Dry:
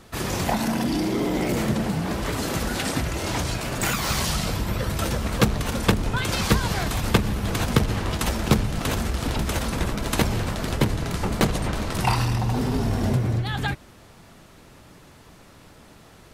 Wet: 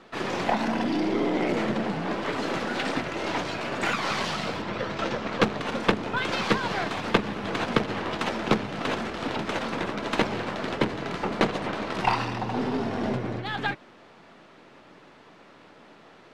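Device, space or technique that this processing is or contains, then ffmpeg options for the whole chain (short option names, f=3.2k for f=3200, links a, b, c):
crystal radio: -filter_complex "[0:a]asettb=1/sr,asplit=3[a][b][c];[a]atrim=end=4.624[d];[b]atrim=start=4.62:end=5.41,asetpts=PTS-STARTPTS,afade=t=in:d=0.004:c=qsin,afade=t=out:st=0.786:d=0.004:c=qsin,lowpass=f=7.2k:w=0.5412,lowpass=f=7.2k:w=1.3066[e];[c]atrim=start=5.406[f];[d][e]acrossfade=d=0.004:c1=hsin:c2=qsin[g];[g][f]acrossfade=d=0.004:c1=qsin:c2=hsin,highpass=250,lowpass=3.3k,aeval=exprs='if(lt(val(0),0),0.708*val(0),val(0))':c=same,volume=2dB"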